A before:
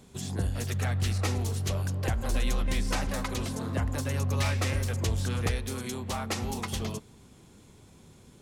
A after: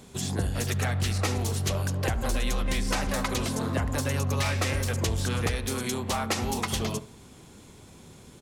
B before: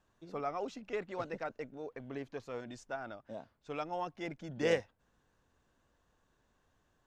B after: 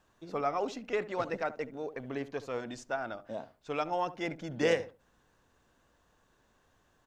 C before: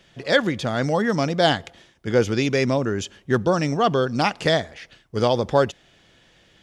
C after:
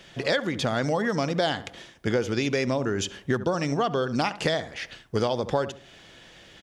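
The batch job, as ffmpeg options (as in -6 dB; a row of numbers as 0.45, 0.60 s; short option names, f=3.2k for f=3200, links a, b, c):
-filter_complex "[0:a]lowshelf=f=250:g=-4,asplit=2[a][b];[b]adelay=71,lowpass=f=1.1k:p=1,volume=-13.5dB,asplit=2[c][d];[d]adelay=71,lowpass=f=1.1k:p=1,volume=0.22,asplit=2[e][f];[f]adelay=71,lowpass=f=1.1k:p=1,volume=0.22[g];[c][e][g]amix=inputs=3:normalize=0[h];[a][h]amix=inputs=2:normalize=0,acompressor=threshold=-29dB:ratio=6,volume=6.5dB"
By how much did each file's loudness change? +2.5, +5.0, -5.0 LU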